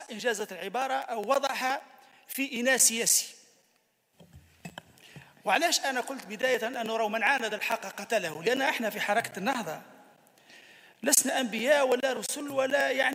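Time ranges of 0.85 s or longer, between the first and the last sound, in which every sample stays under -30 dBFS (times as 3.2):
3.24–4.66
9.75–11.04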